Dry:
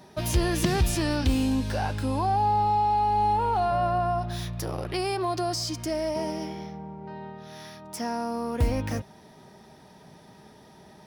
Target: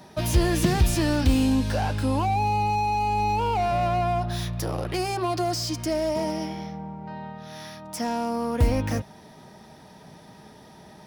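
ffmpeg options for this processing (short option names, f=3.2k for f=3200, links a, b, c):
-filter_complex "[0:a]acrossover=split=590[a][b];[a]bandreject=f=390:w=12[c];[b]asoftclip=type=hard:threshold=-31dB[d];[c][d]amix=inputs=2:normalize=0,volume=3.5dB"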